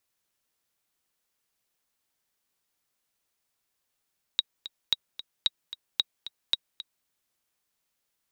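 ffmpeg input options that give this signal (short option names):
-f lavfi -i "aevalsrc='pow(10,(-9.5-14.5*gte(mod(t,2*60/224),60/224))/20)*sin(2*PI*3810*mod(t,60/224))*exp(-6.91*mod(t,60/224)/0.03)':d=2.67:s=44100"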